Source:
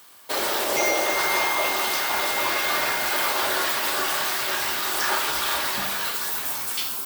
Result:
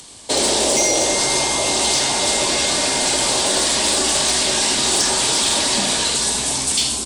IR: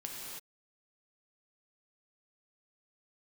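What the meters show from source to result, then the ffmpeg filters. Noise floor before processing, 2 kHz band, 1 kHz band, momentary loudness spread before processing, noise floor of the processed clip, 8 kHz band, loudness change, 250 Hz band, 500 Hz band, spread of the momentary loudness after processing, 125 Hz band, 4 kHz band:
-31 dBFS, 0.0 dB, +1.5 dB, 4 LU, -24 dBFS, +14.0 dB, +6.5 dB, +11.0 dB, +6.5 dB, 2 LU, +14.0 dB, +10.0 dB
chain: -filter_complex "[0:a]acrossover=split=100|5200[a][b][c];[a]aeval=exprs='0.00708*sin(PI/2*7.08*val(0)/0.00708)':c=same[d];[b]alimiter=limit=-21.5dB:level=0:latency=1:release=19[e];[d][e][c]amix=inputs=3:normalize=0,acompressor=mode=upward:threshold=-48dB:ratio=2.5,equalizer=f=250:t=o:w=1:g=9,equalizer=f=500:t=o:w=1:g=4,equalizer=f=1k:t=o:w=1:g=5,equalizer=f=4k:t=o:w=1:g=5,equalizer=f=8k:t=o:w=1:g=9,acontrast=71,equalizer=f=1.3k:w=1.5:g=-12,aresample=22050,aresample=44100,asplit=2[f][g];[g]aecho=0:1:84:0.224[h];[f][h]amix=inputs=2:normalize=0,asoftclip=type=hard:threshold=-9.5dB"

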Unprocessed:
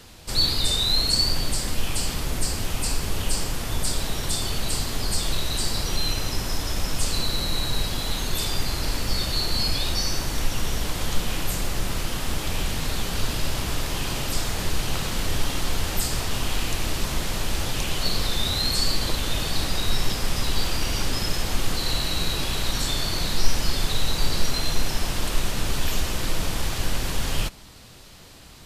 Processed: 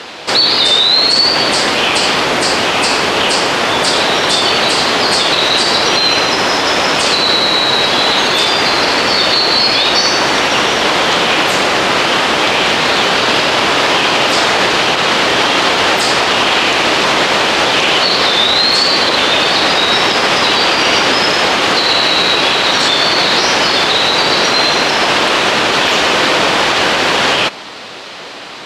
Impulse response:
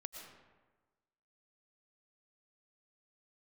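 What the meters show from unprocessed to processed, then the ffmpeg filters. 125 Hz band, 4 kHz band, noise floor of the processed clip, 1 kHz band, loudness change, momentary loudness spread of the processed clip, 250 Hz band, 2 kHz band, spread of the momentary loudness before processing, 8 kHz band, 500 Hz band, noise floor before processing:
+0.5 dB, +16.5 dB, -22 dBFS, +22.0 dB, +16.0 dB, 3 LU, +13.5 dB, +21.5 dB, 5 LU, +8.5 dB, +20.0 dB, -34 dBFS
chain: -af "highpass=410,lowpass=3.5k,alimiter=level_in=24.5dB:limit=-1dB:release=50:level=0:latency=1,volume=-1dB"

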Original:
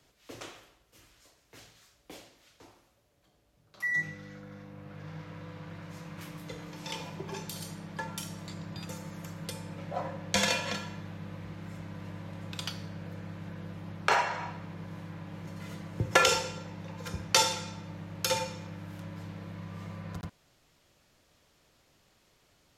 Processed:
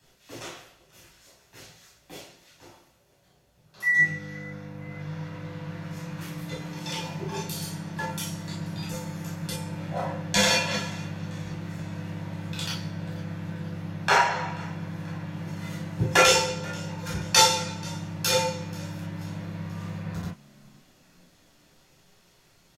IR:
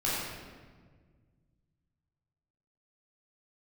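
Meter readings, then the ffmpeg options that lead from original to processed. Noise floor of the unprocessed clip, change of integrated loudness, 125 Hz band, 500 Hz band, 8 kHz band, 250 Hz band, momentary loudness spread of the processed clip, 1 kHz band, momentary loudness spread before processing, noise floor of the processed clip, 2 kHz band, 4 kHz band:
-68 dBFS, +6.5 dB, +7.5 dB, +6.0 dB, +7.0 dB, +7.0 dB, 17 LU, +6.0 dB, 18 LU, -62 dBFS, +7.0 dB, +6.5 dB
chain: -filter_complex "[0:a]highshelf=f=4.7k:g=4.5,asplit=4[a][b][c][d];[b]adelay=484,afreqshift=42,volume=-22.5dB[e];[c]adelay=968,afreqshift=84,volume=-28.5dB[f];[d]adelay=1452,afreqshift=126,volume=-34.5dB[g];[a][e][f][g]amix=inputs=4:normalize=0[h];[1:a]atrim=start_sample=2205,atrim=end_sample=3528,asetrate=52920,aresample=44100[i];[h][i]afir=irnorm=-1:irlink=0"

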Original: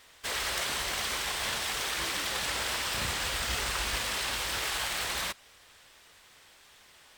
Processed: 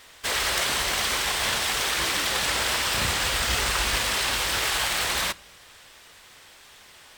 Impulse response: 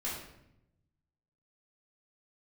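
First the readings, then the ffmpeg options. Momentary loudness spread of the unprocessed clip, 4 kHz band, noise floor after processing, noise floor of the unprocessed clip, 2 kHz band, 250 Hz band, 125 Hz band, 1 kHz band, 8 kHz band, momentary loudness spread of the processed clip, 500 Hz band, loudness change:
2 LU, +7.0 dB, -51 dBFS, -58 dBFS, +7.0 dB, +7.0 dB, +7.0 dB, +7.0 dB, +7.0 dB, 2 LU, +7.0 dB, +7.0 dB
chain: -filter_complex "[0:a]asplit=2[a][b];[1:a]atrim=start_sample=2205,asetrate=57330,aresample=44100,adelay=8[c];[b][c]afir=irnorm=-1:irlink=0,volume=-21dB[d];[a][d]amix=inputs=2:normalize=0,volume=7dB"

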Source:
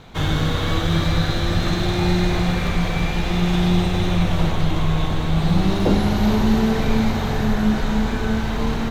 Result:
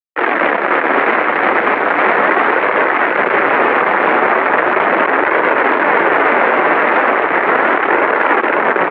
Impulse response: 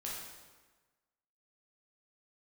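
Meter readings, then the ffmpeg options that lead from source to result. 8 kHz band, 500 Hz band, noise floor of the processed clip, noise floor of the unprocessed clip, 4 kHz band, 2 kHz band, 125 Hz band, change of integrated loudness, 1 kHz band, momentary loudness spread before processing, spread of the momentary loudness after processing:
under -30 dB, +12.5 dB, -17 dBFS, -24 dBFS, -3.0 dB, +17.5 dB, -19.5 dB, +8.5 dB, +16.5 dB, 4 LU, 2 LU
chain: -filter_complex "[0:a]aeval=exprs='(mod(5.62*val(0)+1,2)-1)/5.62':c=same,acrusher=bits=2:mix=0:aa=0.5,flanger=delay=1.8:depth=5.9:regen=-37:speed=0.37:shape=sinusoidal,asplit=2[a][b];[b]aecho=0:1:550:0.531[c];[a][c]amix=inputs=2:normalize=0,highpass=f=370:t=q:w=0.5412,highpass=f=370:t=q:w=1.307,lowpass=f=2.1k:t=q:w=0.5176,lowpass=f=2.1k:t=q:w=0.7071,lowpass=f=2.1k:t=q:w=1.932,afreqshift=-52,alimiter=level_in=22dB:limit=-1dB:release=50:level=0:latency=1,volume=-1dB"

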